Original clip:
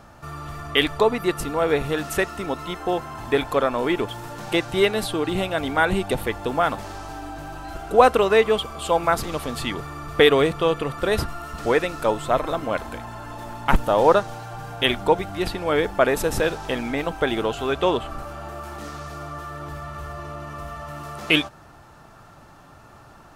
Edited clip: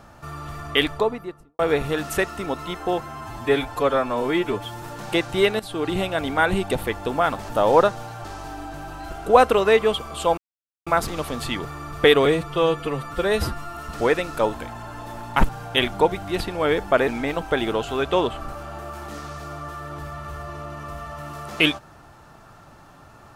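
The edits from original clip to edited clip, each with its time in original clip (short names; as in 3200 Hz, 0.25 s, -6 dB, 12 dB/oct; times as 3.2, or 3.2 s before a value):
0.73–1.59 studio fade out
3.01–4.22 stretch 1.5×
4.99–5.25 fade in, from -15.5 dB
9.02 insert silence 0.49 s
10.41–11.42 stretch 1.5×
12.19–12.86 cut
13.81–14.56 move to 6.89
16.15–16.78 cut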